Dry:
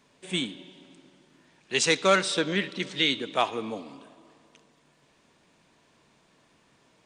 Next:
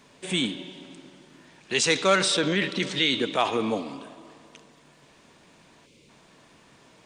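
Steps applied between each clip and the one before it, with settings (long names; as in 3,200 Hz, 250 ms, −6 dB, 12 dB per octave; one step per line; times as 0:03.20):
gain on a spectral selection 0:05.86–0:06.09, 600–2,000 Hz −15 dB
in parallel at −2 dB: compressor whose output falls as the input rises −31 dBFS, ratio −0.5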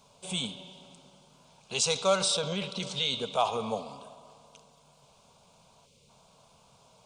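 phaser with its sweep stopped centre 760 Hz, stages 4
level −1 dB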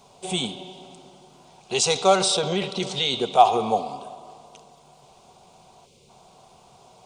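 hollow resonant body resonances 360/740/1,900 Hz, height 13 dB, ringing for 45 ms
level +5 dB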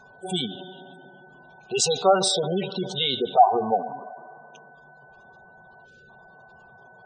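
gate on every frequency bin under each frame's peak −15 dB strong
steady tone 1,500 Hz −51 dBFS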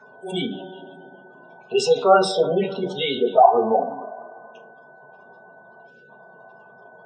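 convolution reverb RT60 0.30 s, pre-delay 3 ms, DRR −2.5 dB
level −8 dB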